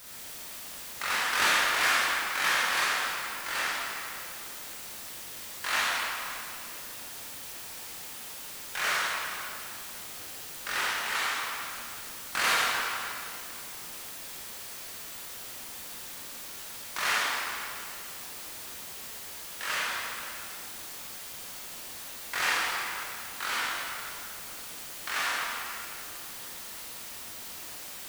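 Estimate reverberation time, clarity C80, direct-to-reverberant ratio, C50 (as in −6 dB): 2.5 s, −2.0 dB, −8.0 dB, −4.0 dB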